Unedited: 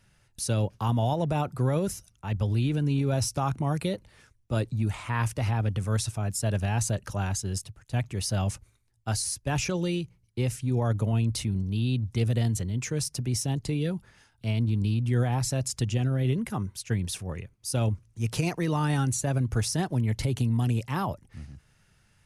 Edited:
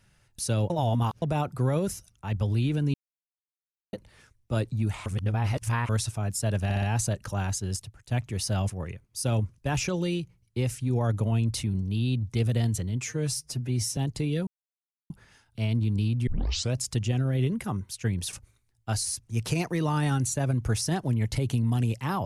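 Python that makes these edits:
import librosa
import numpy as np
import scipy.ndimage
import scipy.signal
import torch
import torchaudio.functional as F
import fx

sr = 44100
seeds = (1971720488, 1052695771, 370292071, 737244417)

y = fx.edit(x, sr, fx.reverse_span(start_s=0.7, length_s=0.52),
    fx.silence(start_s=2.94, length_s=0.99),
    fx.reverse_span(start_s=5.06, length_s=0.83),
    fx.stutter(start_s=6.64, slice_s=0.06, count=4),
    fx.swap(start_s=8.52, length_s=0.87, other_s=17.19, other_length_s=0.88),
    fx.stretch_span(start_s=12.82, length_s=0.64, factor=1.5),
    fx.insert_silence(at_s=13.96, length_s=0.63),
    fx.tape_start(start_s=15.13, length_s=0.47), tone=tone)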